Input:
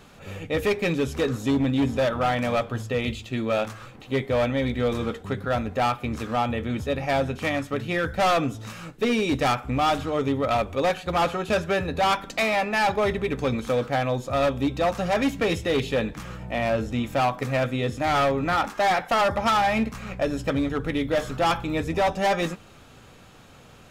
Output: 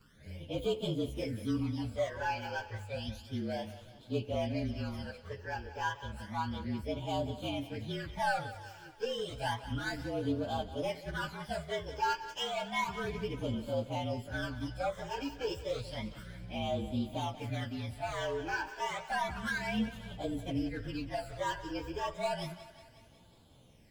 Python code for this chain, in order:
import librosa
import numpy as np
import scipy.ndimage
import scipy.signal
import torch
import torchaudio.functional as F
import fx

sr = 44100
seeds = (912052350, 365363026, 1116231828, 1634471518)

y = fx.partial_stretch(x, sr, pct=112)
y = fx.phaser_stages(y, sr, stages=12, low_hz=200.0, high_hz=1900.0, hz=0.31, feedback_pct=25)
y = fx.echo_thinned(y, sr, ms=183, feedback_pct=61, hz=420.0, wet_db=-13.5)
y = F.gain(torch.from_numpy(y), -7.5).numpy()